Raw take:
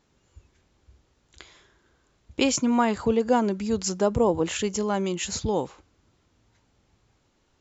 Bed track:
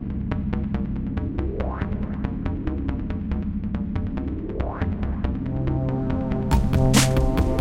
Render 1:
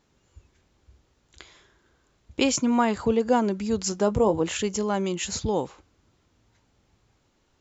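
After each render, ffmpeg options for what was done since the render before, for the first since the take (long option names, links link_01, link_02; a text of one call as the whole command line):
ffmpeg -i in.wav -filter_complex "[0:a]asettb=1/sr,asplit=3[link_01][link_02][link_03];[link_01]atrim=end=3.904[link_04];[link_02]atrim=start=3.9:end=4.4,asetpts=PTS-STARTPTS,afade=type=in:duration=0.004:curve=qsin,afade=type=out:start_time=0.496:duration=0.004:curve=qsin,asplit=2[link_05][link_06];[link_06]adelay=19,volume=-11dB[link_07];[link_05][link_07]amix=inputs=2:normalize=0,atrim=end_sample=22050[link_08];[link_03]atrim=start=4.396[link_09];[link_04][link_08]acrossfade=duration=0.004:curve1=hsin:curve2=qsin[link_10];[link_10][link_09]acrossfade=duration=0.004:curve1=qsin:curve2=hsin" out.wav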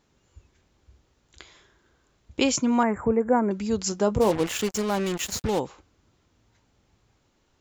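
ffmpeg -i in.wav -filter_complex "[0:a]asettb=1/sr,asplit=3[link_01][link_02][link_03];[link_01]atrim=end=2.834[link_04];[link_02]atrim=start=2.83:end=3.51,asetpts=PTS-STARTPTS,afade=type=in:duration=0.004:curve=qsin,afade=type=out:start_time=0.676:duration=0.004:curve=qsin,asuperstop=centerf=4300:order=12:qfactor=0.77[link_05];[link_03]atrim=start=3.506[link_06];[link_04][link_05]acrossfade=duration=0.004:curve1=hsin:curve2=qsin[link_07];[link_07][link_06]acrossfade=duration=0.004:curve1=qsin:curve2=hsin,asplit=3[link_08][link_09][link_10];[link_08]afade=type=out:start_time=4.2:duration=0.02[link_11];[link_09]acrusher=bits=4:mix=0:aa=0.5,afade=type=in:start_time=4.2:duration=0.02,afade=type=out:start_time=5.58:duration=0.02[link_12];[link_10]afade=type=in:start_time=5.58:duration=0.02[link_13];[link_11][link_12][link_13]amix=inputs=3:normalize=0" out.wav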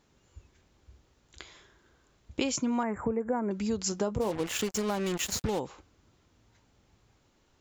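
ffmpeg -i in.wav -af "acompressor=threshold=-27dB:ratio=5" out.wav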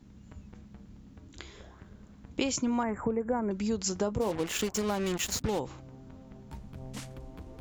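ffmpeg -i in.wav -i bed.wav -filter_complex "[1:a]volume=-25dB[link_01];[0:a][link_01]amix=inputs=2:normalize=0" out.wav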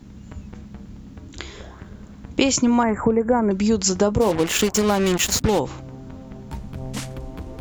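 ffmpeg -i in.wav -af "volume=11.5dB" out.wav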